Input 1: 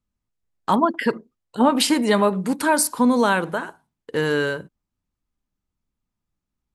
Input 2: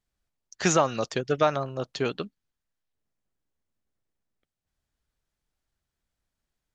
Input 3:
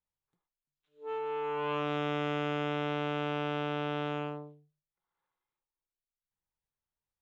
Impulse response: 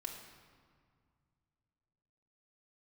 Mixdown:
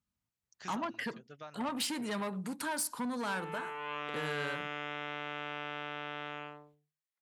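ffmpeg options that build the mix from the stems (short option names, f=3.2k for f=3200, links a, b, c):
-filter_complex "[0:a]asoftclip=type=tanh:threshold=-16.5dB,volume=-2.5dB[a];[1:a]volume=-18dB[b];[2:a]highpass=f=400:p=1,equalizer=f=1.9k:w=2.5:g=6.5,adelay=2200,volume=-3.5dB[c];[a][b]amix=inputs=2:normalize=0,acompressor=threshold=-47dB:ratio=1.5,volume=0dB[d];[c][d]amix=inputs=2:normalize=0,highpass=86,equalizer=f=400:w=0.84:g=-6.5"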